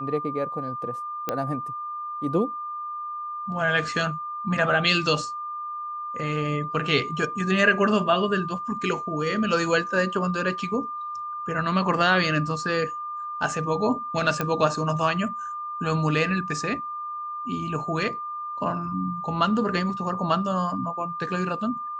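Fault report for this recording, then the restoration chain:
whine 1.2 kHz -30 dBFS
1.29 s: pop -11 dBFS
14.41 s: pop -11 dBFS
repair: de-click; band-stop 1.2 kHz, Q 30

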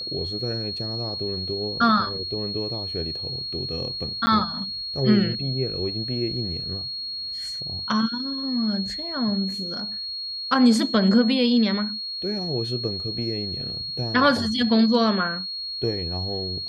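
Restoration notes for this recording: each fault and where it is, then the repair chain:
whine 4.3 kHz -29 dBFS
4.26–4.27 s: dropout 10 ms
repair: band-stop 4.3 kHz, Q 30; interpolate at 4.26 s, 10 ms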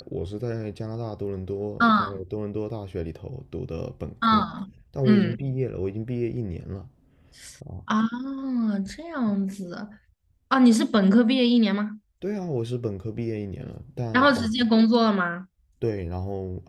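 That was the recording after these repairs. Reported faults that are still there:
nothing left

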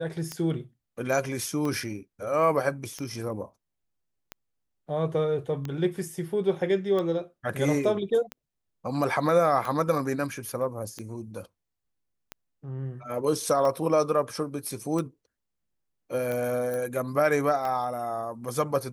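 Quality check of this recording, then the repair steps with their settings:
tick 45 rpm -19 dBFS
16.74 s: pop -21 dBFS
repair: de-click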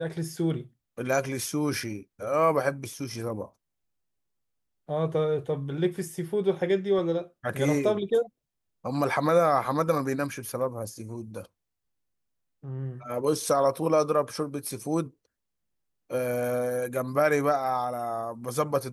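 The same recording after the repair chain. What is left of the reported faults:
16.74 s: pop

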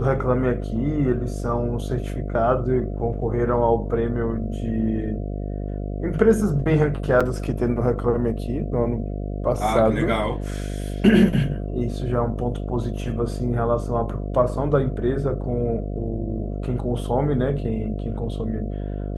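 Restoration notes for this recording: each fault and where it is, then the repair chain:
buzz 50 Hz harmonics 14 -28 dBFS
7.20–7.21 s: dropout 5.7 ms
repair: de-hum 50 Hz, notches 14; interpolate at 7.20 s, 5.7 ms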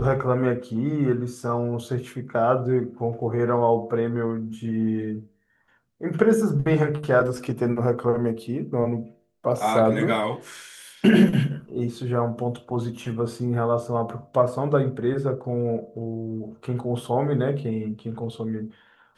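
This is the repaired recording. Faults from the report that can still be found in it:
nothing left

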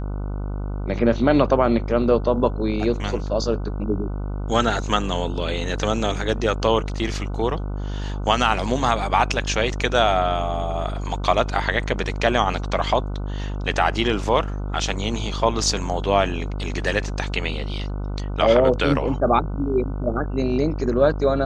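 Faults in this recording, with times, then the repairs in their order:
buzz 50 Hz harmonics 30 -27 dBFS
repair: de-hum 50 Hz, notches 30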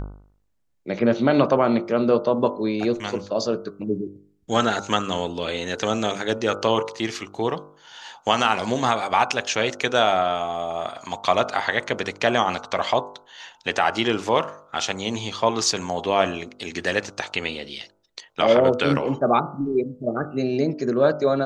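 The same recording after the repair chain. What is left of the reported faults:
nothing left

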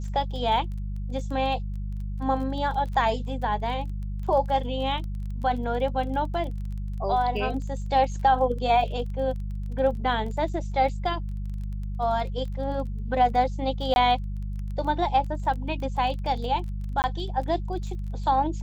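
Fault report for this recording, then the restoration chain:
crackle 21 per s -35 dBFS
hum 50 Hz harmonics 4 -31 dBFS
13.94–13.96 s: dropout 21 ms
17.02–17.04 s: dropout 19 ms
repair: de-click; de-hum 50 Hz, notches 4; interpolate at 13.94 s, 21 ms; interpolate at 17.02 s, 19 ms

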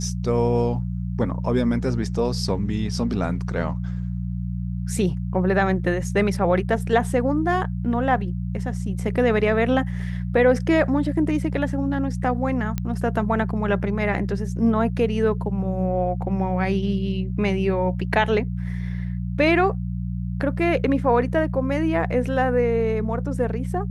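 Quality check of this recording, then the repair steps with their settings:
hum 60 Hz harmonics 3 -27 dBFS
12.78 s: pop -12 dBFS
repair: de-click; de-hum 60 Hz, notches 3

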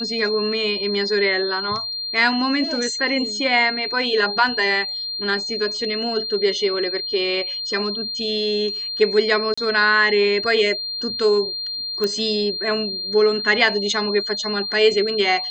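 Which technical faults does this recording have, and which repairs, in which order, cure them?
whine 4.2 kHz -25 dBFS
9.54–9.57 s: dropout 35 ms
12.04 s: pop -10 dBFS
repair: de-click; band-stop 4.2 kHz, Q 30; interpolate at 9.54 s, 35 ms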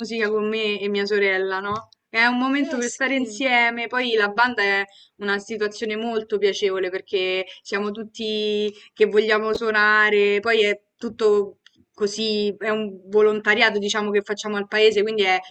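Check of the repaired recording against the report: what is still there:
nothing left

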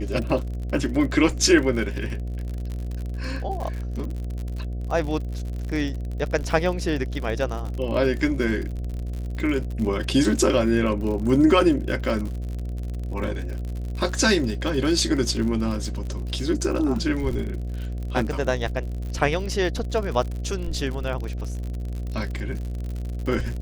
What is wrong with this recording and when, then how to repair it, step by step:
buzz 60 Hz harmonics 12 -29 dBFS
crackle 60 per s -30 dBFS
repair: de-click; de-hum 60 Hz, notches 12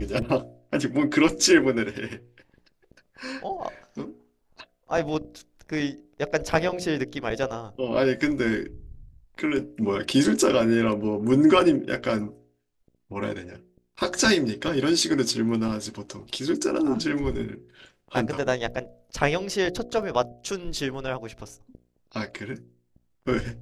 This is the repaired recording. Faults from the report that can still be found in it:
nothing left

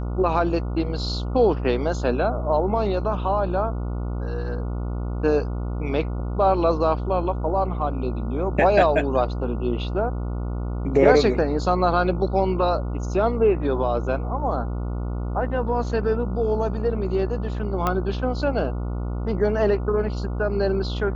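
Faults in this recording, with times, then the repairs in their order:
buzz 60 Hz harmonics 24 -27 dBFS
17.87 s: pop -10 dBFS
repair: de-click; de-hum 60 Hz, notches 24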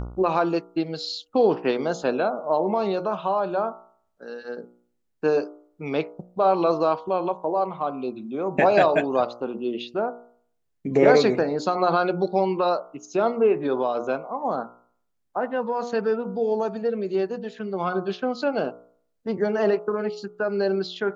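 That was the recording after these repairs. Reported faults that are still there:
nothing left

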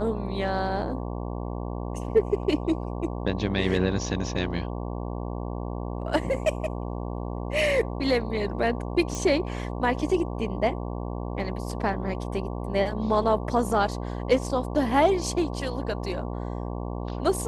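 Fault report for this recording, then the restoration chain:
buzz 60 Hz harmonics 19 -32 dBFS
9.15 s: pop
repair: de-click; de-hum 60 Hz, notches 19

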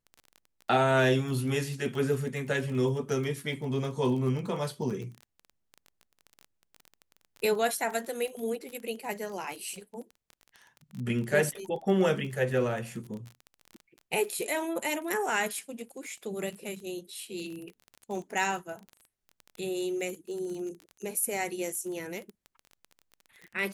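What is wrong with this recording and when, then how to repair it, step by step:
crackle 23 per s -36 dBFS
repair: de-click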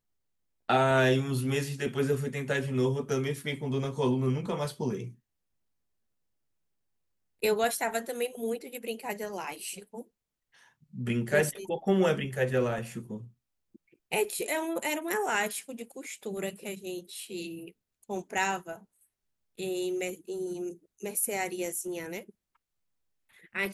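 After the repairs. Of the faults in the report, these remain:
nothing left

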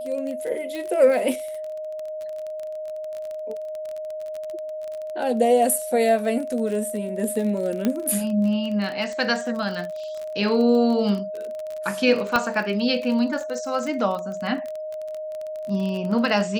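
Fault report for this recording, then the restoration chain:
crackle 29 per s -28 dBFS
whine 620 Hz -29 dBFS
0.75 s: pop
7.85 s: pop -10 dBFS
12.36 s: pop -7 dBFS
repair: de-click; band-stop 620 Hz, Q 30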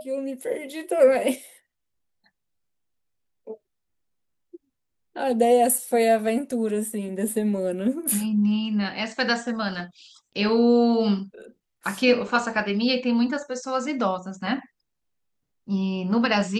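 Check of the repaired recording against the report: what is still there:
nothing left

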